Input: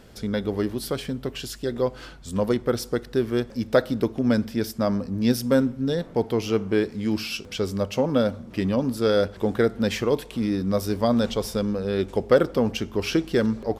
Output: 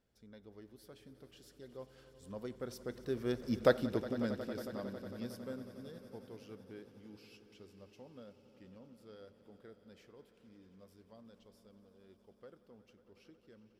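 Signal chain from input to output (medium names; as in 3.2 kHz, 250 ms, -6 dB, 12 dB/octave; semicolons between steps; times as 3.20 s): Doppler pass-by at 3.60 s, 8 m/s, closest 2 m; echo with a slow build-up 91 ms, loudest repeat 5, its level -18 dB; trim -7.5 dB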